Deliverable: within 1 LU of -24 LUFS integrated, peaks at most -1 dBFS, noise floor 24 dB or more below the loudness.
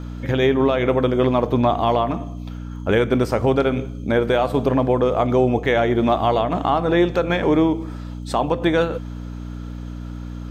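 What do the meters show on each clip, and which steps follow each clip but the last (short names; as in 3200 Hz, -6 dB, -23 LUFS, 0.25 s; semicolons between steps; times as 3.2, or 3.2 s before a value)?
ticks 33/s; hum 60 Hz; harmonics up to 300 Hz; hum level -28 dBFS; loudness -19.5 LUFS; peak -6.5 dBFS; loudness target -24.0 LUFS
-> de-click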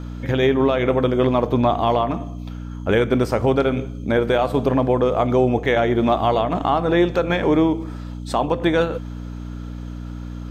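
ticks 0.095/s; hum 60 Hz; harmonics up to 300 Hz; hum level -29 dBFS
-> de-hum 60 Hz, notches 5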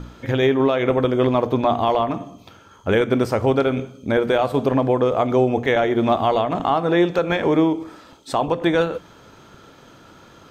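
hum none; loudness -19.5 LUFS; peak -6.5 dBFS; loudness target -24.0 LUFS
-> gain -4.5 dB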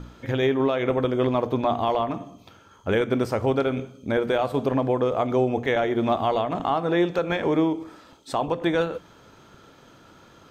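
loudness -24.0 LUFS; peak -11.0 dBFS; noise floor -52 dBFS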